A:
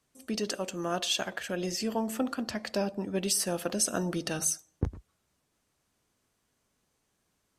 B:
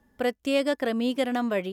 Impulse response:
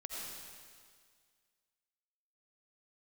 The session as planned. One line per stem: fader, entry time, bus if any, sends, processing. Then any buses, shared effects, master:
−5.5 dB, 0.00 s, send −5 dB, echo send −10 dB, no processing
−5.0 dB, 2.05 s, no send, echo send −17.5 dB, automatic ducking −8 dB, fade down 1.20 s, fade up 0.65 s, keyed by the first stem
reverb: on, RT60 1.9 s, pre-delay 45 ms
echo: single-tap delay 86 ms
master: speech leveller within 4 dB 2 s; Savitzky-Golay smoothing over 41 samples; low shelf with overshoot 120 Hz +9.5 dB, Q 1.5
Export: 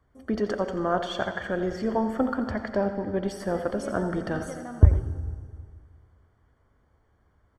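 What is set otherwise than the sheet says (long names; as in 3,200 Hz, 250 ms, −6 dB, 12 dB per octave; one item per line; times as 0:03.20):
stem A −5.5 dB → +3.0 dB
stem B: entry 2.05 s → 3.30 s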